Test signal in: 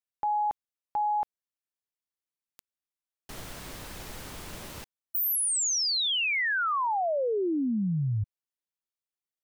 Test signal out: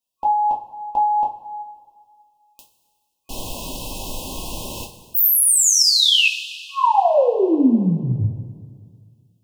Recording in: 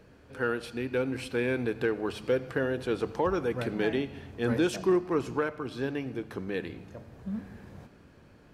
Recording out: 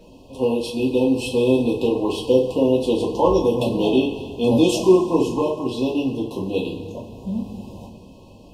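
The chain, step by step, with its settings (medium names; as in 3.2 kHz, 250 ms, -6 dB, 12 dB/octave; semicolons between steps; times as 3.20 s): FFT band-reject 1.1–2.5 kHz; two-slope reverb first 0.26 s, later 2 s, from -18 dB, DRR -4.5 dB; trim +6.5 dB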